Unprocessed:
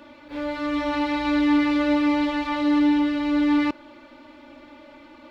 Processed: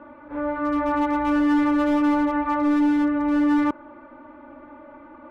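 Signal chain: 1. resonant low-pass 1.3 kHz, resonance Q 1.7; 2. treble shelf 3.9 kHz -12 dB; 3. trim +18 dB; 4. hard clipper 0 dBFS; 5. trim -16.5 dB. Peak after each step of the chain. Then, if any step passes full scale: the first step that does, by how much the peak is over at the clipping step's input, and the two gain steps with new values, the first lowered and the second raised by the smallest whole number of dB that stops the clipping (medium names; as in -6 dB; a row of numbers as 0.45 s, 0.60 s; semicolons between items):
-10.5 dBFS, -11.0 dBFS, +7.0 dBFS, 0.0 dBFS, -16.5 dBFS; step 3, 7.0 dB; step 3 +11 dB, step 5 -9.5 dB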